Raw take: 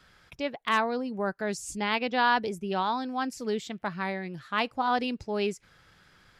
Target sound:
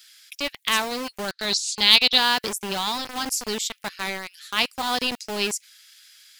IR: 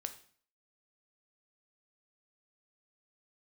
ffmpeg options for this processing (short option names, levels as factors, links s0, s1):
-filter_complex "[0:a]asettb=1/sr,asplit=3[s0][s1][s2];[s0]atrim=end=1.284[s3];[s1]atrim=start=1.28:end=2.18,asetpts=PTS-STARTPTS,afade=t=in:d=0.004:c=qsin,afade=t=out:st=0.896:d=0.004:c=qsin,lowpass=f=4000:t=q:w=5.9[s4];[s2]atrim=start=2.176[s5];[s3][s4]acrossfade=d=0.004:c1=hsin:c2=qsin[s6];[s6][s5]acrossfade=d=0.004:c1=qsin:c2=hsin,acrossover=split=1800[s7][s8];[s7]acrusher=bits=4:mix=0:aa=0.000001[s9];[s8]crystalizer=i=9.5:c=0[s10];[s9][s10]amix=inputs=2:normalize=0,asoftclip=type=hard:threshold=0.944,volume=0.891"